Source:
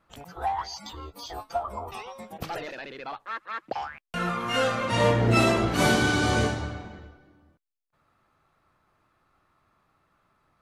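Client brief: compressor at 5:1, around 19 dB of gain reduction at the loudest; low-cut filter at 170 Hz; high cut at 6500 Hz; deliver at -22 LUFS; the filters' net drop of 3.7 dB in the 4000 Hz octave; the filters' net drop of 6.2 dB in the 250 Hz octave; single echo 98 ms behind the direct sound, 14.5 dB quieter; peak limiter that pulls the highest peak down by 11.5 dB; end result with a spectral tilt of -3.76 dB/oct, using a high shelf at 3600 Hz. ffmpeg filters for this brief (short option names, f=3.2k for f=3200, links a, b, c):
-af "highpass=170,lowpass=6.5k,equalizer=f=250:t=o:g=-7,highshelf=f=3.6k:g=3.5,equalizer=f=4k:t=o:g=-7,acompressor=threshold=-42dB:ratio=5,alimiter=level_in=15dB:limit=-24dB:level=0:latency=1,volume=-15dB,aecho=1:1:98:0.188,volume=25.5dB"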